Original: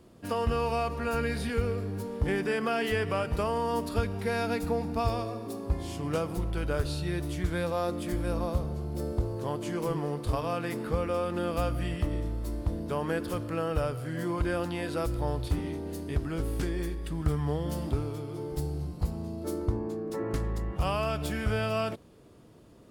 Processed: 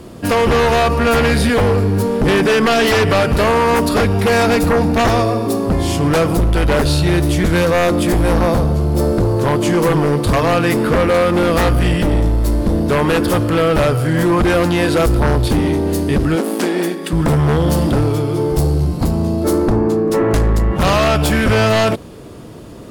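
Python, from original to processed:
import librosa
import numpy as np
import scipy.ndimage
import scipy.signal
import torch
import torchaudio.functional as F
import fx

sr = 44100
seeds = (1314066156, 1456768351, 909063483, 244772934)

y = fx.fold_sine(x, sr, drive_db=11, ceiling_db=-15.0)
y = fx.brickwall_highpass(y, sr, low_hz=170.0, at=(16.35, 17.13))
y = y * 10.0 ** (5.5 / 20.0)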